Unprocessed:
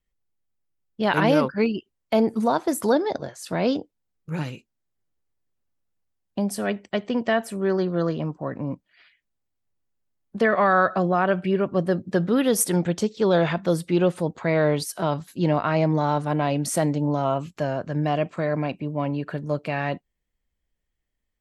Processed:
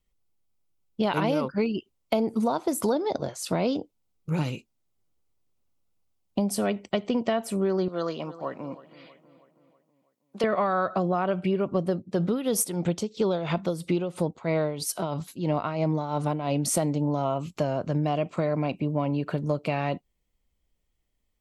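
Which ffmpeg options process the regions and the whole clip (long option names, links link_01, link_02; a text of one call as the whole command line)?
ffmpeg -i in.wav -filter_complex "[0:a]asettb=1/sr,asplit=3[link_01][link_02][link_03];[link_01]atrim=end=7.884[link_04];[link_02]atrim=start=7.88:end=10.44,asetpts=PTS-STARTPTS,afade=type=in:duration=0.004:curve=qsin,afade=type=out:start_time=2.556:duration=0.004:curve=qsin,highpass=frequency=970:poles=1,asplit=2[link_05][link_06];[link_06]adelay=322,lowpass=frequency=3400:poles=1,volume=-17dB,asplit=2[link_07][link_08];[link_08]adelay=322,lowpass=frequency=3400:poles=1,volume=0.53,asplit=2[link_09][link_10];[link_10]adelay=322,lowpass=frequency=3400:poles=1,volume=0.53,asplit=2[link_11][link_12];[link_12]adelay=322,lowpass=frequency=3400:poles=1,volume=0.53,asplit=2[link_13][link_14];[link_14]adelay=322,lowpass=frequency=3400:poles=1,volume=0.53[link_15];[link_05][link_07][link_09][link_11][link_13][link_15]amix=inputs=6:normalize=0,atrim=end_sample=112896[link_16];[link_03]atrim=start=10.436[link_17];[link_04][link_16]acrossfade=duration=0.004:curve1=hsin:curve2=qsin[link_18];[link_18][link_17]acrossfade=duration=0.004:curve1=qsin:curve2=hsin,asettb=1/sr,asplit=3[link_19][link_20][link_21];[link_19]atrim=end=11.924[link_22];[link_20]atrim=start=11.92:end=16.63,asetpts=PTS-STARTPTS,afade=type=in:duration=0.004:curve=qsin,afade=type=out:start_time=4.706:duration=0.004:curve=qsin,tremolo=f=3:d=0.75,aeval=exprs='0.316*(abs(mod(val(0)/0.316+3,4)-2)-1)':channel_layout=same[link_23];[link_21]atrim=start=16.626[link_24];[link_22][link_23]acrossfade=duration=0.004:curve1=hsin:curve2=qsin[link_25];[link_25][link_24]acrossfade=duration=0.004:curve1=qsin:curve2=hsin,equalizer=frequency=1700:width=4.4:gain=-10.5,acompressor=threshold=-26dB:ratio=6,volume=4dB" out.wav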